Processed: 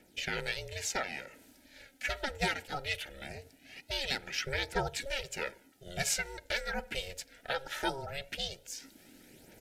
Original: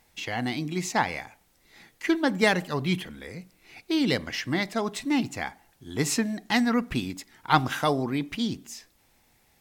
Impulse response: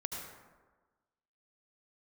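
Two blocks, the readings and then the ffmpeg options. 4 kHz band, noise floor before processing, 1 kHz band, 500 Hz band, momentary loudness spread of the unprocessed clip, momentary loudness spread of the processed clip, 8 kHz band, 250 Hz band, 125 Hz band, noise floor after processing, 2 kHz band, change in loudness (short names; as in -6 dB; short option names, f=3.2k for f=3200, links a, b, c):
-3.5 dB, -65 dBFS, -10.5 dB, -9.0 dB, 15 LU, 13 LU, -2.5 dB, -20.5 dB, -12.0 dB, -63 dBFS, -5.0 dB, -9.0 dB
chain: -filter_complex "[0:a]acrossover=split=600|1700[a][b][c];[a]acompressor=threshold=-38dB:ratio=6[d];[d][b][c]amix=inputs=3:normalize=0,alimiter=limit=-17.5dB:level=0:latency=1:release=431,areverse,acompressor=mode=upward:threshold=-47dB:ratio=2.5,areverse,aphaser=in_gain=1:out_gain=1:delay=4.6:decay=0.51:speed=0.21:type=triangular,aeval=exprs='val(0)*sin(2*PI*270*n/s)':c=same,asuperstop=centerf=1100:order=12:qfactor=3.5,aresample=32000,aresample=44100"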